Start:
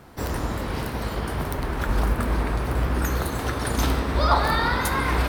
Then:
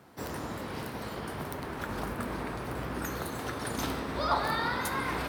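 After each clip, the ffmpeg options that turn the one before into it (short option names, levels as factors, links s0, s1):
-af "highpass=120,volume=0.422"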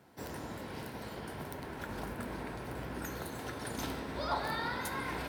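-af "bandreject=f=1200:w=7.4,volume=0.562"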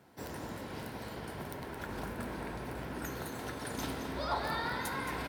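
-af "aecho=1:1:220:0.355"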